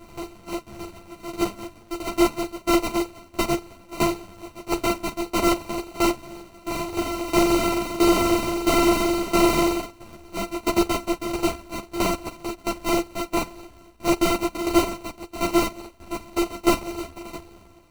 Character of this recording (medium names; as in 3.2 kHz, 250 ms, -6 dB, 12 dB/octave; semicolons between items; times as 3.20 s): a buzz of ramps at a fixed pitch in blocks of 128 samples; tremolo saw down 1.5 Hz, depth 85%; aliases and images of a low sample rate 1.7 kHz, jitter 0%; a shimmering, thickened sound